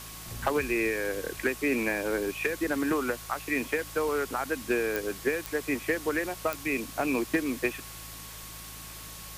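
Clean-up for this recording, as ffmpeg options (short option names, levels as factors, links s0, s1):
-af "adeclick=t=4,bandreject=f=54.3:t=h:w=4,bandreject=f=108.6:t=h:w=4,bandreject=f=162.9:t=h:w=4,bandreject=f=1100:w=30,afwtdn=0.0071"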